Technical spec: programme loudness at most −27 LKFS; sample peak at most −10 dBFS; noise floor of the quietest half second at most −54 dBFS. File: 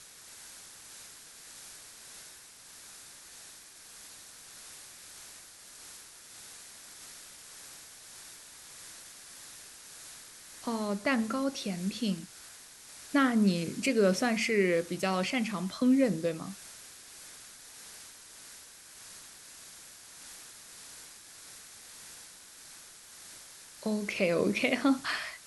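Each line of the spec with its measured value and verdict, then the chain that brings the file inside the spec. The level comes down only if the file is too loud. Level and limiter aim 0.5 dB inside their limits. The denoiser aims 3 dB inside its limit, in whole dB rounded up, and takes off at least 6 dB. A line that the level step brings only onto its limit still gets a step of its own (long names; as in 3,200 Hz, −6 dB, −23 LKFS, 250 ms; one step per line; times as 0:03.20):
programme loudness −29.5 LKFS: in spec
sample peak −13.0 dBFS: in spec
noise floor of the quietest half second −52 dBFS: out of spec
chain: broadband denoise 6 dB, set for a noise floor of −52 dBFS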